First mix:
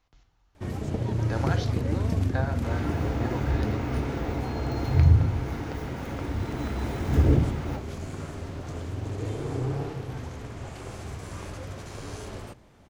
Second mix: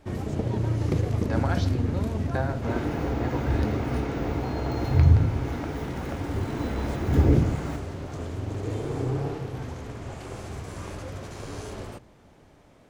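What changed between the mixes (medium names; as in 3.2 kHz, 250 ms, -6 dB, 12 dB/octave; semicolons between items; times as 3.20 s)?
first sound: entry -0.55 s; master: add peaking EQ 410 Hz +2.5 dB 2.7 oct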